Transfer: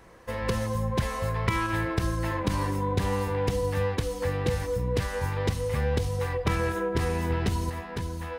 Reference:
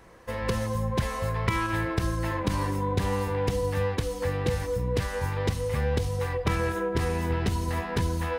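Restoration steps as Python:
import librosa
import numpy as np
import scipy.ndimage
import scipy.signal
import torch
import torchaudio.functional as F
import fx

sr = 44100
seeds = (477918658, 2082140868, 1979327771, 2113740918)

y = fx.fix_level(x, sr, at_s=7.7, step_db=6.0)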